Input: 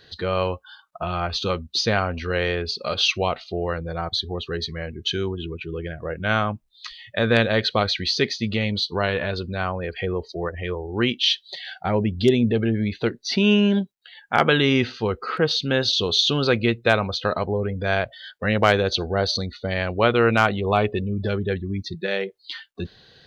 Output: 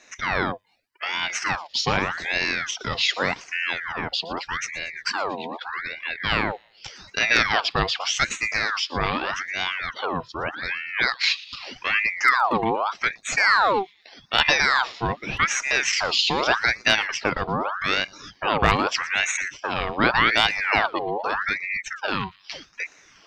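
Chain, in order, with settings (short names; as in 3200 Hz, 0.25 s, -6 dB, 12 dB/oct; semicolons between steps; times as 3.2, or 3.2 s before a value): thin delay 0.117 s, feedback 51%, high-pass 2400 Hz, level -18 dB; spectral gain 0.52–1.03, 510–5300 Hz -20 dB; ring modulator with a swept carrier 1400 Hz, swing 60%, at 0.83 Hz; gain +1.5 dB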